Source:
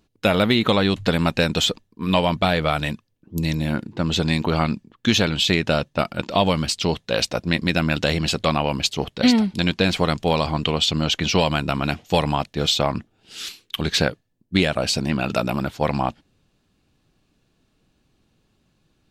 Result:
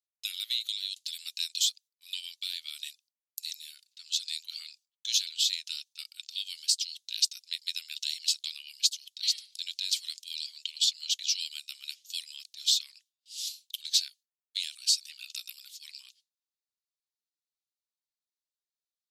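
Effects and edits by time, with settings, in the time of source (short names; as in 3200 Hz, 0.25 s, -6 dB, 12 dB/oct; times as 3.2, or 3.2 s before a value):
0.59–1.18 bell 1200 Hz -8 dB 1.2 oct
9.52–10.2 transient shaper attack -4 dB, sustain +5 dB
whole clip: inverse Chebyshev high-pass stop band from 700 Hz, stop band 80 dB; gate with hold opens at -56 dBFS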